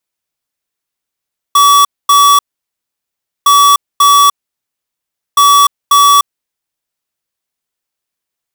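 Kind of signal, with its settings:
beeps in groups square 1,140 Hz, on 0.30 s, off 0.24 s, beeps 2, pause 1.07 s, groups 3, −6 dBFS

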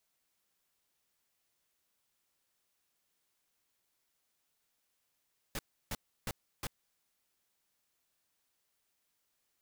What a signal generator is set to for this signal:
noise bursts pink, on 0.04 s, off 0.32 s, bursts 4, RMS −37.5 dBFS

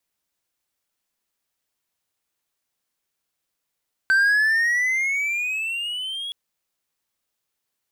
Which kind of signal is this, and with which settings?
pitch glide with a swell triangle, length 2.22 s, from 1,540 Hz, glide +13.5 semitones, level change −14 dB, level −12 dB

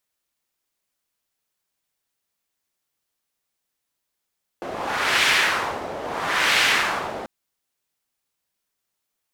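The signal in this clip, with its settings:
wind from filtered noise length 2.64 s, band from 590 Hz, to 2,400 Hz, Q 1.4, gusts 2, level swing 13.5 dB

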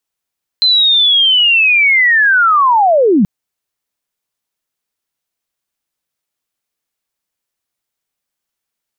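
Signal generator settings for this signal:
glide linear 4,100 Hz → 170 Hz −7 dBFS → −6.5 dBFS 2.63 s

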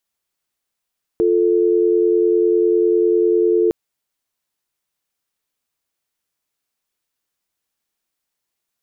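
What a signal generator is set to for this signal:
call progress tone dial tone, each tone −15 dBFS 2.51 s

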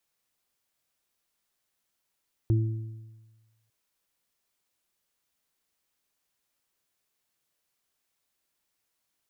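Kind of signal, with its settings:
harmonic partials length 1.20 s, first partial 111 Hz, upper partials −18/−9 dB, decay 1.29 s, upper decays 1.10/0.92 s, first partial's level −18.5 dB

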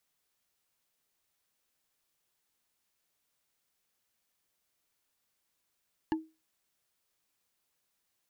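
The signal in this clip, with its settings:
struck wood bar, lowest mode 318 Hz, decay 0.27 s, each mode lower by 5 dB, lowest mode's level −24 dB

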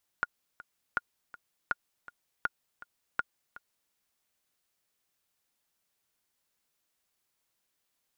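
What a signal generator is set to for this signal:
click track 162 BPM, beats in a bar 2, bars 5, 1,430 Hz, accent 18.5 dB −14.5 dBFS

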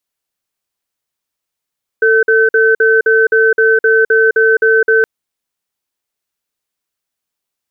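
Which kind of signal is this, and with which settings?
tone pair in a cadence 446 Hz, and 1,530 Hz, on 0.21 s, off 0.05 s, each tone −9.5 dBFS 3.02 s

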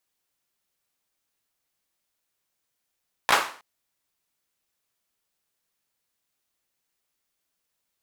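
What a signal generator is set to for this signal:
synth clap length 0.32 s, bursts 3, apart 16 ms, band 1,100 Hz, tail 0.43 s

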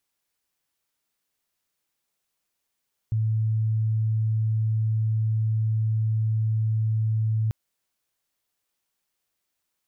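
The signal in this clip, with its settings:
tone sine 110 Hz −20.5 dBFS 4.39 s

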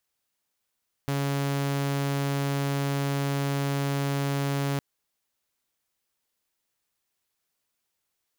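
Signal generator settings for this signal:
tone saw 140 Hz −22.5 dBFS 3.71 s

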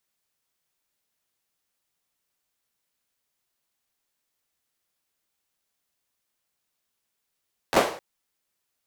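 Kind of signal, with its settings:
synth clap length 0.26 s, apart 11 ms, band 540 Hz, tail 0.48 s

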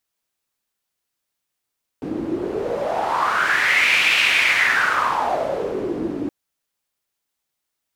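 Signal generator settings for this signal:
wind from filtered noise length 4.27 s, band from 300 Hz, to 2,500 Hz, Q 5.4, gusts 1, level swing 9.5 dB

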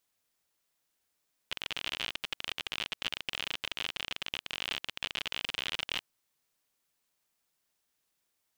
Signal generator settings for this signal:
Geiger counter clicks 51 per second −17.5 dBFS 4.50 s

